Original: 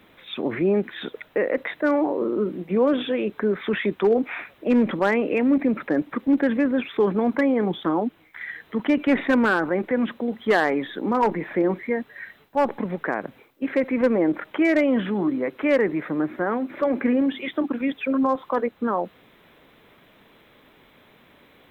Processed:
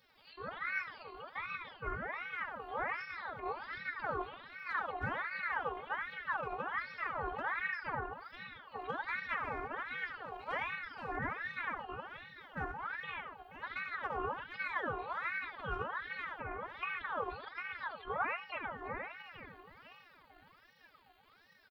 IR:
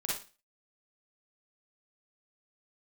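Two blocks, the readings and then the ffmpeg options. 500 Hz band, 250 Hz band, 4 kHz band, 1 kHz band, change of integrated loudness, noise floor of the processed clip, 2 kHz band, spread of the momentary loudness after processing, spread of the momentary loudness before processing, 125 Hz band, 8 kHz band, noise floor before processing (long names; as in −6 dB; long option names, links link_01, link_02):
−23.0 dB, −31.5 dB, −13.5 dB, −9.5 dB, −16.5 dB, −65 dBFS, −8.0 dB, 10 LU, 8 LU, −15.0 dB, can't be measured, −56 dBFS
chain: -filter_complex "[0:a]equalizer=frequency=360:width=2.2:gain=-6.5,aecho=1:1:475|950|1425|1900|2375:0.251|0.113|0.0509|0.0229|0.0103,asplit=2[link_01][link_02];[1:a]atrim=start_sample=2205,adelay=19[link_03];[link_02][link_03]afir=irnorm=-1:irlink=0,volume=-7dB[link_04];[link_01][link_04]amix=inputs=2:normalize=0,afftfilt=real='hypot(re,im)*cos(2*PI*random(0))':imag='hypot(re,im)*sin(2*PI*random(1))':win_size=512:overlap=0.75,acrossover=split=150|980[link_05][link_06][link_07];[link_07]acompressor=threshold=-46dB:ratio=20[link_08];[link_05][link_06][link_08]amix=inputs=3:normalize=0,asubboost=boost=6.5:cutoff=80,afftfilt=real='hypot(re,im)*cos(PI*b)':imag='0':win_size=512:overlap=0.75,aeval=exprs='val(0)*sin(2*PI*1300*n/s+1300*0.45/1.3*sin(2*PI*1.3*n/s))':channel_layout=same,volume=-2.5dB"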